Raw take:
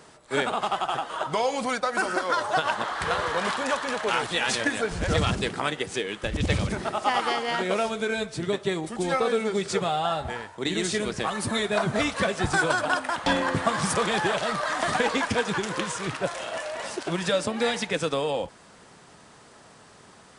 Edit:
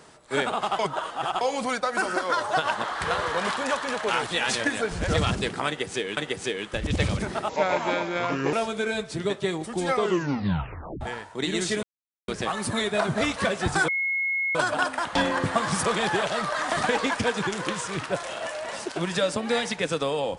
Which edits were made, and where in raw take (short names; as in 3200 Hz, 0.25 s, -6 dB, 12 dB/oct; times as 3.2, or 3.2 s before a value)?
0.79–1.41 reverse
5.67–6.17 loop, 2 plays
6.99–7.76 speed 74%
9.15 tape stop 1.09 s
11.06 insert silence 0.45 s
12.66 add tone 2170 Hz -23 dBFS 0.67 s